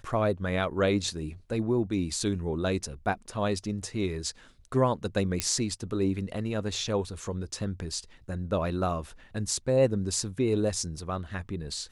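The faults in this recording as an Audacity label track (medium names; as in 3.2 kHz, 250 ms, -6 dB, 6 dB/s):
5.400000	5.400000	pop -9 dBFS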